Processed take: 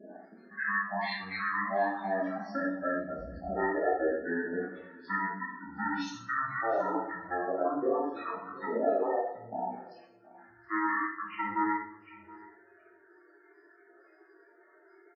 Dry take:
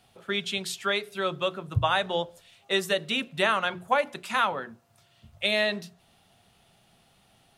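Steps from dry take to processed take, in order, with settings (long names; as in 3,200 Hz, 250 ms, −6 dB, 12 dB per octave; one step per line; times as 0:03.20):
slices reordered back to front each 85 ms, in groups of 3
high-pass filter 660 Hz 12 dB per octave
in parallel at +1.5 dB: brickwall limiter −22.5 dBFS, peak gain reduction 11 dB
on the sum: downward compressor 2.5 to 1, threshold −32 dBFS, peak gain reduction 10.5 dB
spectral peaks only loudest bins 32
on a send: single-tap delay 361 ms −21.5 dB
on the sum: rectangular room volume 260 cubic metres, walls furnished, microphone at 3.6 metres
wrong playback speed 15 ips tape played at 7.5 ips
level −4.5 dB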